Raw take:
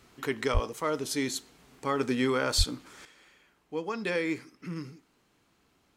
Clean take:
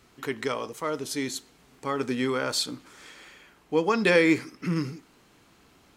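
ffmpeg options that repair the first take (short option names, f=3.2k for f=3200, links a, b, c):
-filter_complex "[0:a]asplit=3[a][b][c];[a]afade=t=out:st=0.53:d=0.02[d];[b]highpass=f=140:w=0.5412,highpass=f=140:w=1.3066,afade=t=in:st=0.53:d=0.02,afade=t=out:st=0.65:d=0.02[e];[c]afade=t=in:st=0.65:d=0.02[f];[d][e][f]amix=inputs=3:normalize=0,asplit=3[g][h][i];[g]afade=t=out:st=2.57:d=0.02[j];[h]highpass=f=140:w=0.5412,highpass=f=140:w=1.3066,afade=t=in:st=2.57:d=0.02,afade=t=out:st=2.69:d=0.02[k];[i]afade=t=in:st=2.69:d=0.02[l];[j][k][l]amix=inputs=3:normalize=0,asetnsamples=n=441:p=0,asendcmd='3.05 volume volume 10dB',volume=0dB"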